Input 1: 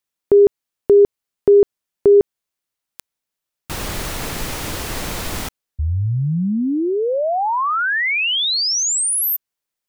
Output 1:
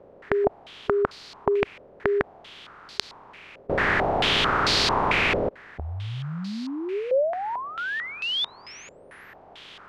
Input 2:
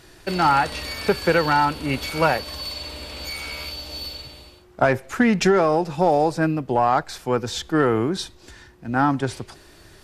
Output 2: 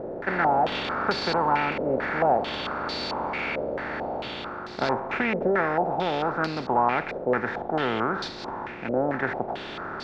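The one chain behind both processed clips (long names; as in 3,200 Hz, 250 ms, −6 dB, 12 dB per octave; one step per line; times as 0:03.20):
compressor on every frequency bin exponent 0.4
low-pass on a step sequencer 4.5 Hz 550–4,400 Hz
level −14 dB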